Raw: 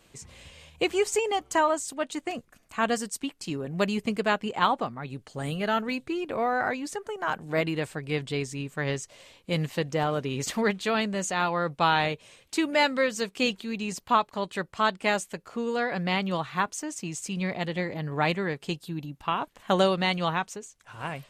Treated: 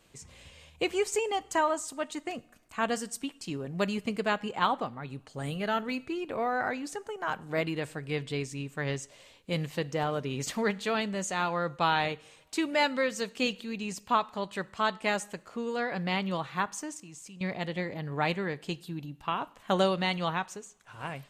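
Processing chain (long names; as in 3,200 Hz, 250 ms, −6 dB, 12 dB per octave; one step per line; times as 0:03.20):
0:16.97–0:17.41: output level in coarse steps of 22 dB
convolution reverb, pre-delay 3 ms, DRR 18.5 dB
level −3.5 dB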